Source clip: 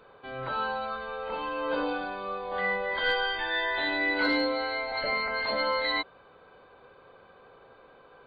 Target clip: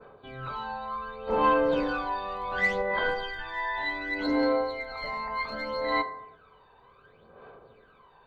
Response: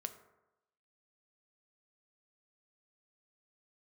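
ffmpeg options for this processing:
-filter_complex "[0:a]adynamicequalizer=threshold=0.00501:dfrequency=3200:dqfactor=1.1:tfrequency=3200:tqfactor=1.1:attack=5:release=100:ratio=0.375:range=4:mode=cutabove:tftype=bell,asplit=3[a][b][c];[a]afade=t=out:st=1.27:d=0.02[d];[b]acontrast=82,afade=t=in:st=1.27:d=0.02,afade=t=out:st=2.81:d=0.02[e];[c]afade=t=in:st=2.81:d=0.02[f];[d][e][f]amix=inputs=3:normalize=0,aeval=exprs='0.237*(cos(1*acos(clip(val(0)/0.237,-1,1)))-cos(1*PI/2))+0.0133*(cos(5*acos(clip(val(0)/0.237,-1,1)))-cos(5*PI/2))':c=same,aphaser=in_gain=1:out_gain=1:delay=1.1:decay=0.68:speed=0.67:type=sinusoidal[g];[1:a]atrim=start_sample=2205,afade=t=out:st=0.42:d=0.01,atrim=end_sample=18963[h];[g][h]afir=irnorm=-1:irlink=0,volume=-4dB"

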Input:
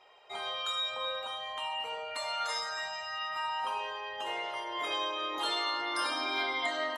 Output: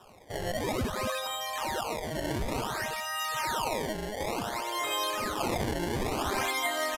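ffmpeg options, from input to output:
-filter_complex "[0:a]asplit=2[a][b];[b]alimiter=level_in=7.5dB:limit=-24dB:level=0:latency=1,volume=-7.5dB,volume=-2dB[c];[a][c]amix=inputs=2:normalize=0,acrusher=samples=20:mix=1:aa=0.000001:lfo=1:lforange=32:lforate=0.56,aresample=32000,aresample=44100"

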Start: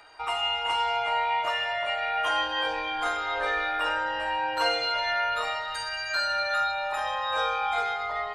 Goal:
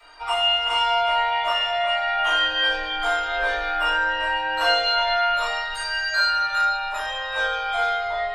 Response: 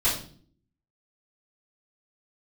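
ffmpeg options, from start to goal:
-filter_complex "[0:a]equalizer=f=110:w=0.41:g=-7.5[a];[1:a]atrim=start_sample=2205,atrim=end_sample=3528[b];[a][b]afir=irnorm=-1:irlink=0,volume=-6.5dB"

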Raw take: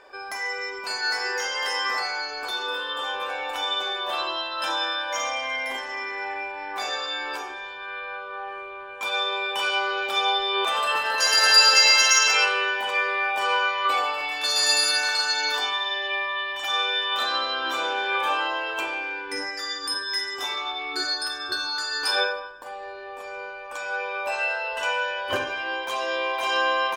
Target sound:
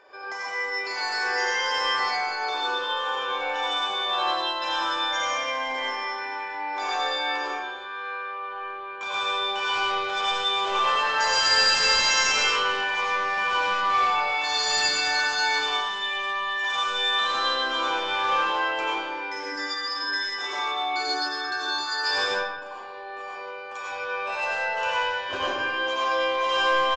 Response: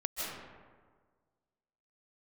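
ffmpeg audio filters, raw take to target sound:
-filter_complex "[0:a]highpass=f=130:p=1,highshelf=f=4.7k:g=-3.5,aresample=16000,asoftclip=type=tanh:threshold=-20dB,aresample=44100,asplit=2[a][b];[b]adelay=34,volume=-14dB[c];[a][c]amix=inputs=2:normalize=0[d];[1:a]atrim=start_sample=2205,asetrate=74970,aresample=44100[e];[d][e]afir=irnorm=-1:irlink=0,volume=2.5dB"

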